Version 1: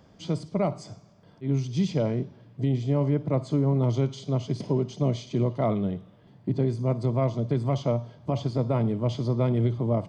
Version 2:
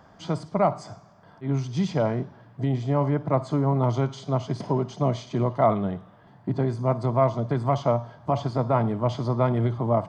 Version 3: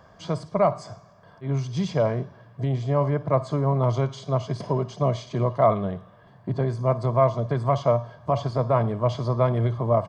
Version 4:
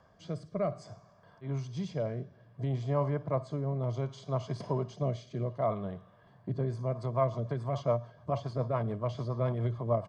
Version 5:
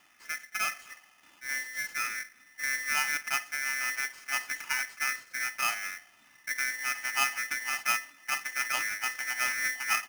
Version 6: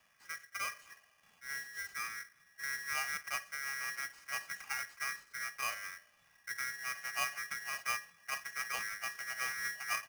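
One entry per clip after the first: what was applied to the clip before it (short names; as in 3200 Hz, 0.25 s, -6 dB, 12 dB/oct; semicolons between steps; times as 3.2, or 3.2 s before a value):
band shelf 1100 Hz +10 dB
comb 1.8 ms, depth 43%
rotary speaker horn 0.6 Hz, later 7 Hz, at 6.33; gain -7 dB
polarity switched at an audio rate 1900 Hz
frequency shift -110 Hz; gain -8 dB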